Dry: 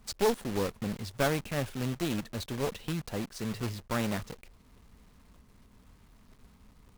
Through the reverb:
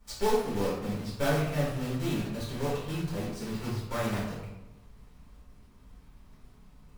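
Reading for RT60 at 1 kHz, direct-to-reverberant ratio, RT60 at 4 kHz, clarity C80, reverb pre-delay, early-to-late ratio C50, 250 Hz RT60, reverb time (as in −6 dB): 0.95 s, −9.0 dB, 0.60 s, 4.5 dB, 4 ms, 1.0 dB, 1.3 s, 1.0 s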